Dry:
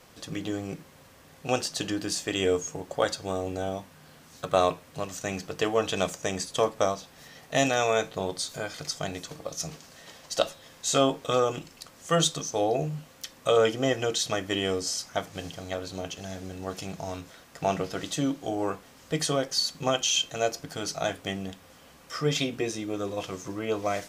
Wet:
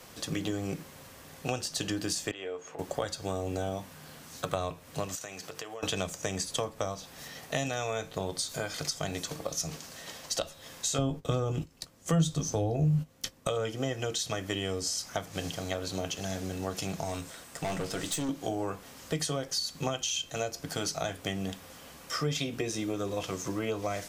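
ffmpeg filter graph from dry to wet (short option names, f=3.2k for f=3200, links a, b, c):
-filter_complex "[0:a]asettb=1/sr,asplit=3[a][b][c];[a]atrim=end=2.314[d];[b]atrim=start=2.31:end=2.79,asetpts=PTS-STARTPTS,afade=t=in:d=0.004:c=qsin,afade=t=out:st=0.476:d=0.004:c=qsin,acrossover=split=380 3300:gain=0.178 1 0.0891[e][f][g];[e][f][g]amix=inputs=3:normalize=0,acompressor=threshold=-46dB:ratio=2:attack=3.2:release=140:knee=1:detection=peak[h];[c]atrim=start=2.786[i];[d][h]acrossfade=d=0.004:c1=hsin:c2=qsin[j];[j][i]acrossfade=d=0.004:c1=qsin:c2=hsin,asettb=1/sr,asplit=3[k][l][m];[k]atrim=end=5.154[n];[l]atrim=start=5.15:end=5.83,asetpts=PTS-STARTPTS,afade=t=in:d=0.004:c=qsin,afade=t=out:st=0.676:d=0.004:c=qsin,highpass=110,equalizer=f=210:w=0.9:g=-10,acompressor=threshold=-41dB:ratio=8:attack=3.2:release=140:knee=1:detection=peak[o];[m]atrim=start=5.826[p];[n][o]acrossfade=d=0.004:c1=hsin:c2=qsin[q];[q][p]acrossfade=d=0.004:c1=qsin:c2=hsin,asettb=1/sr,asplit=3[r][s][t];[r]atrim=end=10.984[u];[s]atrim=start=10.98:end=13.47,asetpts=PTS-STARTPTS,afade=t=in:d=0.004:c=qsin,afade=t=out:st=2.486:d=0.004:c=qsin,agate=range=-16dB:threshold=-44dB:ratio=16:release=100:detection=peak,lowshelf=f=460:g=11,asplit=2[v][w];[w]adelay=19,volume=-13dB[x];[v][x]amix=inputs=2:normalize=0,atrim=end_sample=109809[y];[t]atrim=start=13.466[z];[u][y]acrossfade=d=0.004:c1=hsin:c2=qsin[aa];[aa][z]acrossfade=d=0.004:c1=qsin:c2=hsin,asettb=1/sr,asplit=3[ab][ac][ad];[ab]atrim=end=17.034[ae];[ac]atrim=start=17.03:end=18.29,asetpts=PTS-STARTPTS,afade=t=in:d=0.004:c=qsin,afade=t=out:st=1.256:d=0.004:c=qsin,equalizer=f=8.3k:t=o:w=0.26:g=9,aeval=exprs='(tanh(31.6*val(0)+0.3)-tanh(0.3))/31.6':c=same[af];[ad]atrim=start=18.286[ag];[ae][af]acrossfade=d=0.004:c1=hsin:c2=qsin[ah];[ah][ag]acrossfade=d=0.004:c1=qsin:c2=hsin,highshelf=f=6.1k:g=5,acrossover=split=120[ai][aj];[aj]acompressor=threshold=-32dB:ratio=10[ak];[ai][ak]amix=inputs=2:normalize=0,volume=3dB"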